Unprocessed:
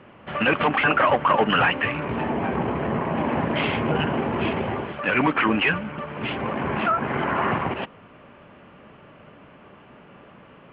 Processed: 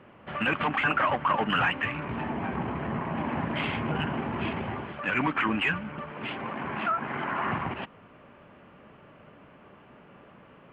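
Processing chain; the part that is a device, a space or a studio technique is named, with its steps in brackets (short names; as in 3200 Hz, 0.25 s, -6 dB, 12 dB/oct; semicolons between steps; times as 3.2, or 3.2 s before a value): 6.1–7.47 HPF 210 Hz 6 dB/oct; dynamic EQ 480 Hz, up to -7 dB, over -37 dBFS, Q 1.4; exciter from parts (in parallel at -10 dB: HPF 2900 Hz 12 dB/oct + soft clip -25 dBFS, distortion -15 dB + HPF 2600 Hz 12 dB/oct); on the sum: gain -4.5 dB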